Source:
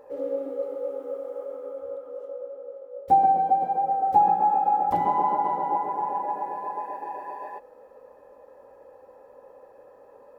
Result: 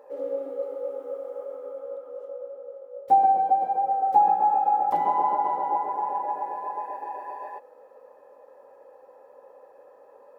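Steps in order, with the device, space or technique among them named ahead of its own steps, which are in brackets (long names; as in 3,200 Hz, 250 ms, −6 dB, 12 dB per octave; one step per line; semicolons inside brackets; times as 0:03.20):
filter by subtraction (in parallel: low-pass filter 620 Hz 12 dB per octave + polarity inversion)
on the sum: level −2 dB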